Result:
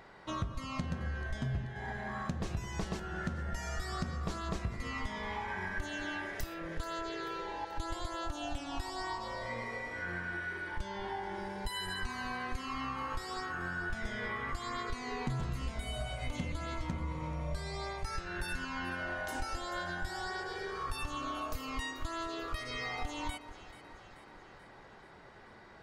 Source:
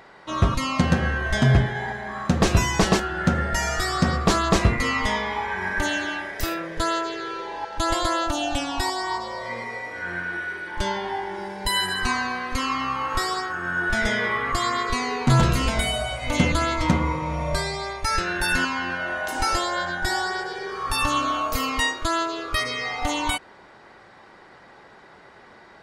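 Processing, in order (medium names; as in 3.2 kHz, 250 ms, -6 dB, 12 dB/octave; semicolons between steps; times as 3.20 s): bass shelf 150 Hz +9.5 dB; compression 6:1, threshold -27 dBFS, peak gain reduction 19.5 dB; echo whose repeats swap between lows and highs 217 ms, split 1.8 kHz, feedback 75%, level -13 dB; trim -7.5 dB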